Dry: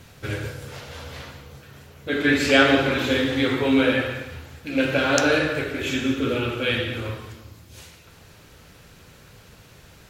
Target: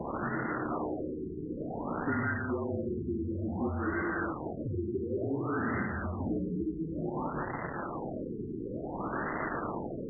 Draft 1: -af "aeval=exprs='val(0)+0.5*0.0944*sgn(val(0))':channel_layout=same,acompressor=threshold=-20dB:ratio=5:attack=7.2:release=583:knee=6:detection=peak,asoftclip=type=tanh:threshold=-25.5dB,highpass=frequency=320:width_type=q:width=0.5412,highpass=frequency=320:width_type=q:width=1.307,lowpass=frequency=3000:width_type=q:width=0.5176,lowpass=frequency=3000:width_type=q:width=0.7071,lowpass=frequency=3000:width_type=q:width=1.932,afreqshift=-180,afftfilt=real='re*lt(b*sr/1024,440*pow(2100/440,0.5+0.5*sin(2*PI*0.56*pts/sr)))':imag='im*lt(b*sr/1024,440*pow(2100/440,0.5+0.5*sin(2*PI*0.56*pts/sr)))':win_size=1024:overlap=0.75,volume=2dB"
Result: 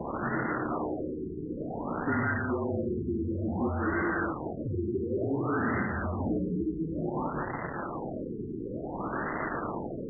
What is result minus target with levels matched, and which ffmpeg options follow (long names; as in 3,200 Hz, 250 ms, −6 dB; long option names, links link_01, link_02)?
downward compressor: peak gain reduction −5.5 dB
-af "aeval=exprs='val(0)+0.5*0.0944*sgn(val(0))':channel_layout=same,acompressor=threshold=-27dB:ratio=5:attack=7.2:release=583:knee=6:detection=peak,asoftclip=type=tanh:threshold=-25.5dB,highpass=frequency=320:width_type=q:width=0.5412,highpass=frequency=320:width_type=q:width=1.307,lowpass=frequency=3000:width_type=q:width=0.5176,lowpass=frequency=3000:width_type=q:width=0.7071,lowpass=frequency=3000:width_type=q:width=1.932,afreqshift=-180,afftfilt=real='re*lt(b*sr/1024,440*pow(2100/440,0.5+0.5*sin(2*PI*0.56*pts/sr)))':imag='im*lt(b*sr/1024,440*pow(2100/440,0.5+0.5*sin(2*PI*0.56*pts/sr)))':win_size=1024:overlap=0.75,volume=2dB"